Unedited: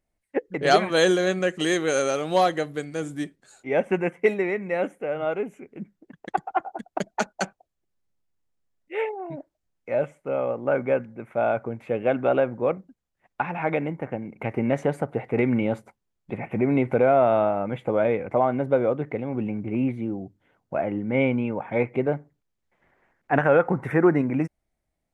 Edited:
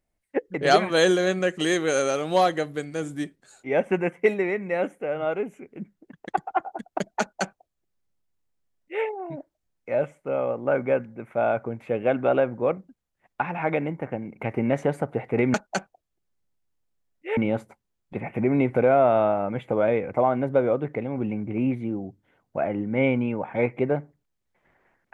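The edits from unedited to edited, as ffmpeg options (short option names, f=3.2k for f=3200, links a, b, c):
-filter_complex "[0:a]asplit=3[a][b][c];[a]atrim=end=15.542[d];[b]atrim=start=7.198:end=9.032[e];[c]atrim=start=15.538[f];[d][e]acrossfade=d=0.004:c1=hsin:c2=hsin[g];[g][f]acrossfade=d=0.004:c1=hsin:c2=hsin"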